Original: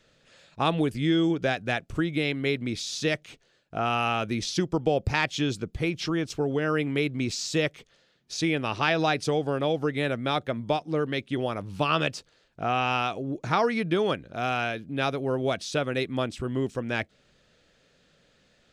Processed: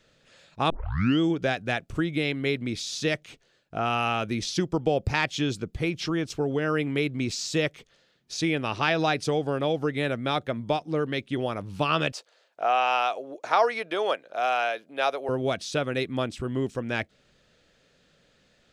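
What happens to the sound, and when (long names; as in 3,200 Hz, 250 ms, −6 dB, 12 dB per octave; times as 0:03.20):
0:00.70: tape start 0.50 s
0:12.12–0:15.29: high-pass with resonance 610 Hz, resonance Q 1.7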